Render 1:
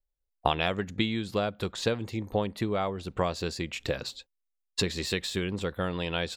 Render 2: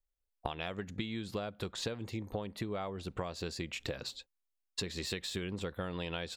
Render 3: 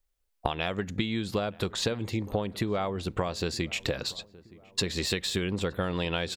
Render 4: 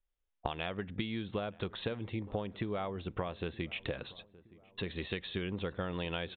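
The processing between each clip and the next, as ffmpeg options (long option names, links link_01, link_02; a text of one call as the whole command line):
ffmpeg -i in.wav -af "acompressor=threshold=-31dB:ratio=6,volume=-3dB" out.wav
ffmpeg -i in.wav -filter_complex "[0:a]asplit=2[link_01][link_02];[link_02]adelay=920,lowpass=frequency=1300:poles=1,volume=-21dB,asplit=2[link_03][link_04];[link_04]adelay=920,lowpass=frequency=1300:poles=1,volume=0.51,asplit=2[link_05][link_06];[link_06]adelay=920,lowpass=frequency=1300:poles=1,volume=0.51,asplit=2[link_07][link_08];[link_08]adelay=920,lowpass=frequency=1300:poles=1,volume=0.51[link_09];[link_01][link_03][link_05][link_07][link_09]amix=inputs=5:normalize=0,volume=8.5dB" out.wav
ffmpeg -i in.wav -af "aresample=8000,aresample=44100,volume=-7dB" out.wav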